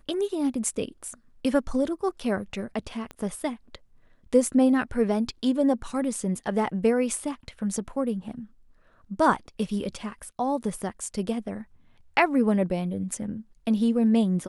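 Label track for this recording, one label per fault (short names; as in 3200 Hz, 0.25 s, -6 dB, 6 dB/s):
3.110000	3.110000	pop -24 dBFS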